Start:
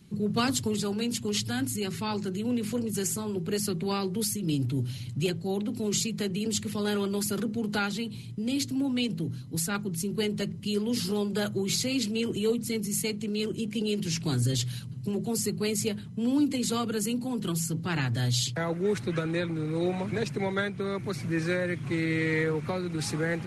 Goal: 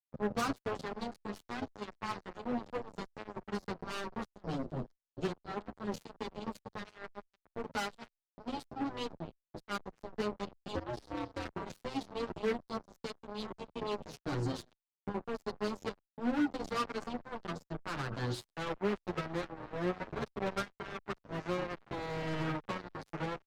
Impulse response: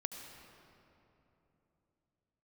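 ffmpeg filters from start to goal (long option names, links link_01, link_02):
-filter_complex "[0:a]lowpass=frequency=5800:width=0.5412,lowpass=frequency=5800:width=1.3066,highshelf=frequency=1600:width_type=q:width=3:gain=-7.5,asplit=2[link_01][link_02];[link_02]adelay=250,highpass=300,lowpass=3400,asoftclip=type=hard:threshold=-22dB,volume=-14dB[link_03];[link_01][link_03]amix=inputs=2:normalize=0,asplit=3[link_04][link_05][link_06];[link_04]afade=type=out:start_time=6.82:duration=0.02[link_07];[link_05]agate=range=-33dB:threshold=-22dB:ratio=3:detection=peak,afade=type=in:start_time=6.82:duration=0.02,afade=type=out:start_time=7.52:duration=0.02[link_08];[link_06]afade=type=in:start_time=7.52:duration=0.02[link_09];[link_07][link_08][link_09]amix=inputs=3:normalize=0,acrusher=bits=3:mix=0:aa=0.5,asettb=1/sr,asplit=3[link_10][link_11][link_12];[link_10]atrim=end=10.754[link_13];[link_11]atrim=start=10.75:end=11.53,asetpts=PTS-STARTPTS,afade=type=in:duration=0.004:curve=qsin,afade=type=out:start_time=0.776:duration=0.004:curve=qsin,aeval=exprs='val(0)*sin(2*PI*120*n/s)':channel_layout=same[link_14];[link_12]atrim=start=11.526[link_15];[link_13][link_14]acrossfade=duration=0.004:curve1=hsin:curve2=qsin[link_16];[link_16][link_15]acrossfade=duration=0.004:curve1=qsin:curve2=hsin,asoftclip=type=hard:threshold=-19.5dB,equalizer=frequency=110:width=2.3:gain=-3.5,asoftclip=type=tanh:threshold=-14dB,asplit=2[link_17][link_18];[link_18]adelay=8.9,afreqshift=-1.3[link_19];[link_17][link_19]amix=inputs=2:normalize=1,volume=-2.5dB"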